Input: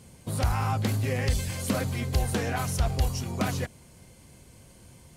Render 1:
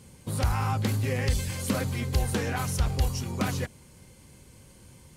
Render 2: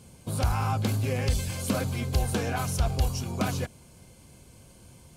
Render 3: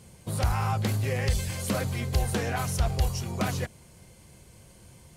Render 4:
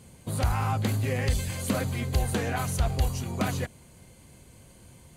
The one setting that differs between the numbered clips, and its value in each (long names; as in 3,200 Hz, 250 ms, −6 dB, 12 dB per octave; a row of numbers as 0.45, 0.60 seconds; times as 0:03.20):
notch filter, centre frequency: 680, 1,900, 260, 5,400 Hertz